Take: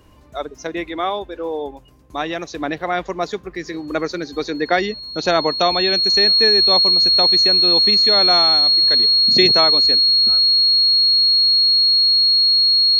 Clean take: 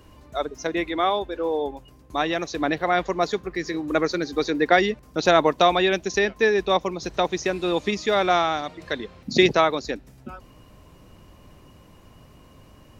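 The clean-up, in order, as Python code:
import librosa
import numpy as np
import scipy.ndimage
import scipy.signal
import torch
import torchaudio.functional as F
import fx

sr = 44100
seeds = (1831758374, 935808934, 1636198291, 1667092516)

y = fx.notch(x, sr, hz=4300.0, q=30.0)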